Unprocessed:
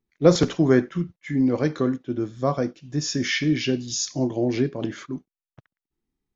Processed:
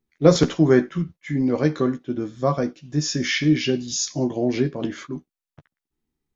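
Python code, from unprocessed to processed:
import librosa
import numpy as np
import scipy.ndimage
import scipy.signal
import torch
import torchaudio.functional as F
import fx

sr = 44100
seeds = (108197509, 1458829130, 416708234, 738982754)

y = fx.doubler(x, sr, ms=13.0, db=-7.5)
y = y * librosa.db_to_amplitude(1.0)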